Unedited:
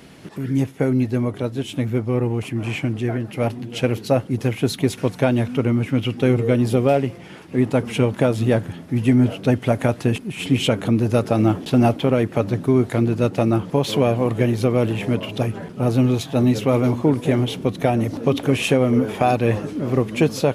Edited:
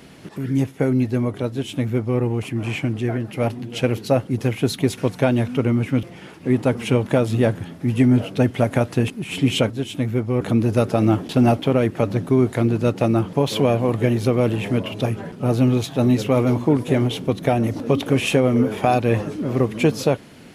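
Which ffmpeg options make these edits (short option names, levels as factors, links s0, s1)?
-filter_complex "[0:a]asplit=4[s0][s1][s2][s3];[s0]atrim=end=6.032[s4];[s1]atrim=start=7.108:end=10.782[s5];[s2]atrim=start=1.488:end=2.202[s6];[s3]atrim=start=10.778[s7];[s4][s5]acrossfade=d=0.004:c1=hsin:c2=hsin[s8];[s8][s6]acrossfade=d=0.004:c1=hsin:c2=hsin[s9];[s9][s7]acrossfade=d=0.004:c1=hsin:c2=hsin"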